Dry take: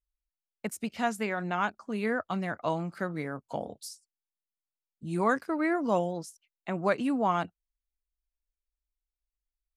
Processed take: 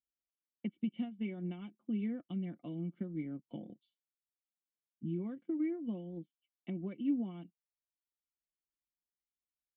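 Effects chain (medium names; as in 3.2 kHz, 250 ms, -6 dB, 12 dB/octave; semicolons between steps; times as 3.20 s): high-pass 100 Hz; band-stop 2.4 kHz, Q 5.9; comb 5.7 ms, depth 56%; transient shaper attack +2 dB, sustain -5 dB; compression, threshold -29 dBFS, peak gain reduction 11 dB; cascade formant filter i; trim +4.5 dB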